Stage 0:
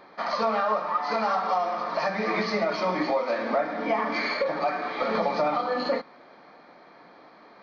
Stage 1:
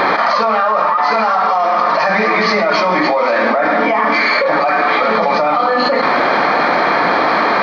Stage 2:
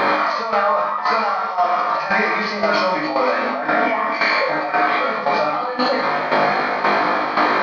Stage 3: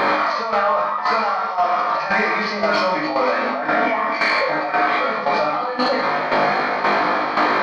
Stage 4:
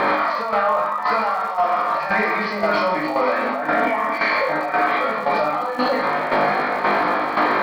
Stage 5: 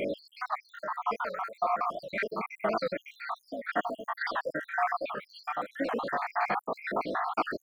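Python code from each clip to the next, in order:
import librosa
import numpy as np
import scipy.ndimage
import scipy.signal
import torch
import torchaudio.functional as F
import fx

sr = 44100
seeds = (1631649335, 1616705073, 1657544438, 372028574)

y1 = fx.peak_eq(x, sr, hz=1500.0, db=7.0, octaves=2.6)
y1 = fx.env_flatten(y1, sr, amount_pct=100)
y1 = F.gain(torch.from_numpy(y1), 2.0).numpy()
y2 = fx.comb_fb(y1, sr, f0_hz=51.0, decay_s=0.76, harmonics='all', damping=0.0, mix_pct=90)
y2 = fx.tremolo_shape(y2, sr, shape='saw_down', hz=1.9, depth_pct=65)
y2 = F.gain(torch.from_numpy(y2), 8.0).numpy()
y3 = 10.0 ** (-6.5 / 20.0) * np.tanh(y2 / 10.0 ** (-6.5 / 20.0))
y4 = fx.air_absorb(y3, sr, metres=160.0)
y4 = fx.dmg_crackle(y4, sr, seeds[0], per_s=150.0, level_db=-33.0)
y5 = fx.spec_dropout(y4, sr, seeds[1], share_pct=73)
y5 = fx.record_warp(y5, sr, rpm=78.0, depth_cents=160.0)
y5 = F.gain(torch.from_numpy(y5), -7.5).numpy()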